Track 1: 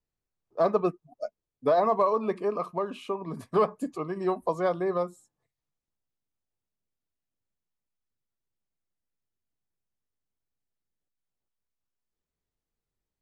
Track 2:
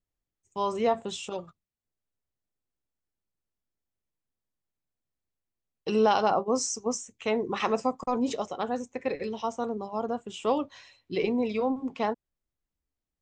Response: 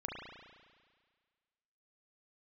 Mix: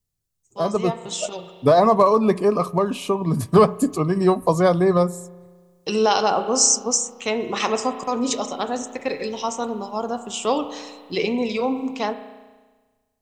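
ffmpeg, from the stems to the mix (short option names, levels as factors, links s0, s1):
-filter_complex "[0:a]equalizer=f=110:t=o:w=0.83:g=7,volume=0.794,asplit=2[s0][s1];[s1]volume=0.1[s2];[1:a]highpass=f=460:p=1,volume=0.473,asplit=2[s3][s4];[s4]volume=0.473[s5];[2:a]atrim=start_sample=2205[s6];[s2][s5]amix=inputs=2:normalize=0[s7];[s7][s6]afir=irnorm=-1:irlink=0[s8];[s0][s3][s8]amix=inputs=3:normalize=0,bass=f=250:g=8,treble=f=4000:g=12,dynaudnorm=f=180:g=13:m=3.35"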